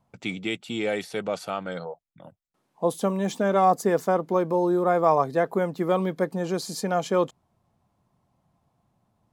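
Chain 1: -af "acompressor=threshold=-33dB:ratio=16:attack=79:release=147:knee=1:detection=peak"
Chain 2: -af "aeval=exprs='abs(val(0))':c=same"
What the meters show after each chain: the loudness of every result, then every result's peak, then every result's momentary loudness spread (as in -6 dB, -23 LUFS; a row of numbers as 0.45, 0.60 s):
-33.0, -29.0 LUFS; -13.0, -8.0 dBFS; 4, 11 LU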